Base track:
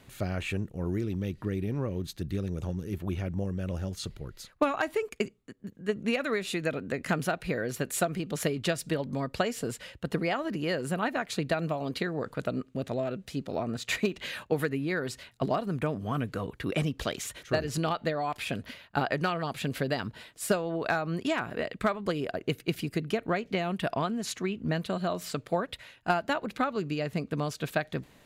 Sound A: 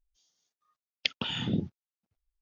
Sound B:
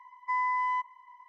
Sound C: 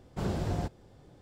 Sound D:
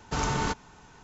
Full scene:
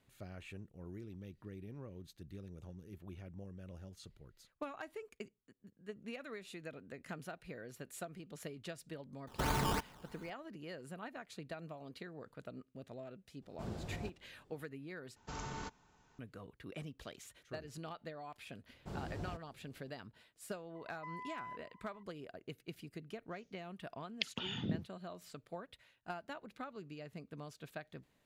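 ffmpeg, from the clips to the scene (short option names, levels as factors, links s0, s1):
-filter_complex "[4:a]asplit=2[s0][s1];[3:a]asplit=2[s2][s3];[0:a]volume=0.133[s4];[s0]acrusher=samples=15:mix=1:aa=0.000001:lfo=1:lforange=15:lforate=3[s5];[2:a]acompressor=threshold=0.0178:ratio=6:attack=3.2:release=140:knee=1:detection=peak[s6];[s4]asplit=2[s7][s8];[s7]atrim=end=15.164[s9];[s1]atrim=end=1.03,asetpts=PTS-STARTPTS,volume=0.158[s10];[s8]atrim=start=16.186[s11];[s5]atrim=end=1.03,asetpts=PTS-STARTPTS,volume=0.501,afade=t=in:d=0.004:c=hsin,afade=t=out:st=1.026:d=0.004:c=hsin,adelay=9270[s12];[s2]atrim=end=1.21,asetpts=PTS-STARTPTS,volume=0.237,afade=t=in:d=0.004:c=hsin,afade=t=out:st=1.206:d=0.004:c=hsin,adelay=13420[s13];[s3]atrim=end=1.21,asetpts=PTS-STARTPTS,volume=0.237,afade=t=in:d=0.004:c=hsin,afade=t=out:st=1.206:d=0.004:c=hsin,adelay=18690[s14];[s6]atrim=end=1.28,asetpts=PTS-STARTPTS,volume=0.316,afade=t=in:d=0.004:c=hsin,afade=t=out:st=1.276:d=0.004:c=hsin,adelay=20750[s15];[1:a]atrim=end=2.41,asetpts=PTS-STARTPTS,volume=0.376,afade=t=in:d=0.004:c=hsin,afade=t=out:st=2.406:d=0.004:c=hsin,adelay=23160[s16];[s9][s10]acrossfade=d=0.004:c1=hsin:c2=hsin[s17];[s17][s11]acrossfade=d=0.004:c1=hsin:c2=hsin[s18];[s18][s12][s13][s14][s15][s16]amix=inputs=6:normalize=0"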